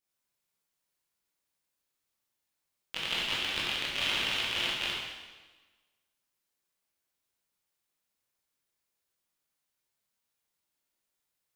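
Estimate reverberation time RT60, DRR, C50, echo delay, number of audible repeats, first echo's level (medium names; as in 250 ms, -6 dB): 1.3 s, -6.5 dB, -0.5 dB, no echo, no echo, no echo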